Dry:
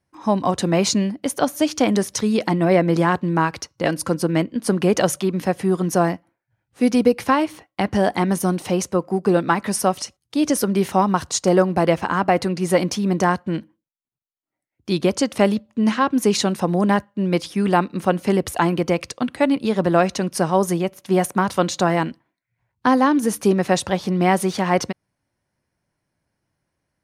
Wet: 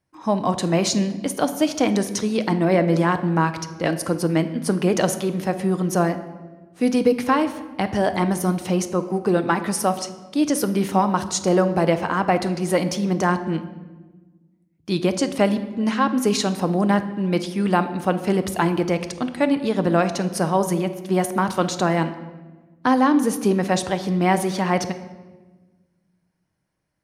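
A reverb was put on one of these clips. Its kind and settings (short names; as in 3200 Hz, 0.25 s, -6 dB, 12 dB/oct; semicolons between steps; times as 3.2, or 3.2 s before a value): shoebox room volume 960 m³, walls mixed, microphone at 0.54 m; gain -2 dB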